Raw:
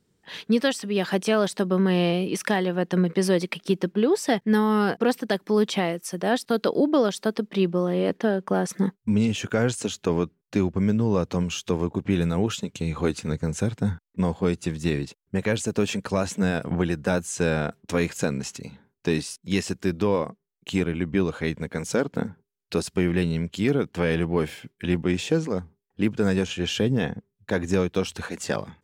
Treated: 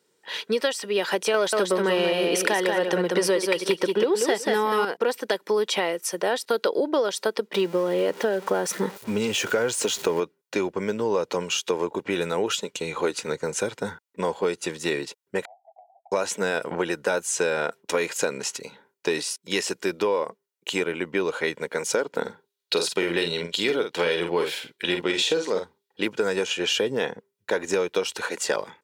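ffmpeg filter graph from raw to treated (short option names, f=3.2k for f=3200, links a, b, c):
-filter_complex "[0:a]asettb=1/sr,asplit=3[a][b][c];[a]atrim=end=1.344[d];[b]atrim=start=1.34:end=4.85,asetpts=PTS-STARTPTS,afade=t=in:d=0.004:c=qsin,afade=t=out:st=3.506:d=0.004:c=qsin,acontrast=86,aecho=1:1:185|370|555:0.562|0.101|0.0182,atrim=end_sample=154791[e];[c]atrim=start=4.846[f];[d][e]acrossfade=d=0.004:c1=hsin:c2=qsin[g];[g][f]acrossfade=d=0.004:c1=qsin:c2=hsin,asettb=1/sr,asplit=3[h][i][j];[h]atrim=end=7.544[k];[i]atrim=start=7.54:end=10.2,asetpts=PTS-STARTPTS,afade=t=in:d=0.004:c=qsin,afade=t=out:st=2.656:d=0.004:c=qsin,aeval=exprs='val(0)+0.5*0.015*sgn(val(0))':c=same,lowshelf=f=190:g=7[l];[j]atrim=start=10.196[m];[k][l]acrossfade=d=0.004:c1=hsin:c2=qsin[n];[n][m]acrossfade=d=0.004:c1=qsin:c2=hsin,asettb=1/sr,asplit=3[o][p][q];[o]atrim=end=15.454[r];[p]atrim=start=15.45:end=16.12,asetpts=PTS-STARTPTS,afade=t=in:d=0.004:c=qsin,afade=t=out:st=0.666:d=0.004:c=qsin,asuperpass=centerf=730:order=8:qfactor=5.2,acompressor=threshold=-49dB:ratio=3:attack=3.2:release=140:knee=1:detection=peak[s];[q]atrim=start=16.116[t];[r][s]acrossfade=d=0.004:c1=hsin:c2=qsin[u];[u][t]acrossfade=d=0.004:c1=qsin:c2=hsin,asettb=1/sr,asplit=3[v][w][x];[v]atrim=end=22.214[y];[w]atrim=start=22.21:end=26.07,asetpts=PTS-STARTPTS,afade=t=in:d=0.004:c=qsin,afade=t=out:st=3.856:d=0.004:c=qsin,equalizer=f=3.8k:t=o:w=0.63:g=9.5,asplit=2[z][aa];[aa]adelay=47,volume=-7dB[ab];[z][ab]amix=inputs=2:normalize=0,atrim=end_sample=170226[ac];[x]atrim=start=26.066[ad];[y][ac]acrossfade=d=0.004:c1=hsin:c2=qsin[ae];[ae][ad]acrossfade=d=0.004:c1=qsin:c2=hsin,highpass=410,aecho=1:1:2.1:0.35,acompressor=threshold=-25dB:ratio=6,volume=5.5dB"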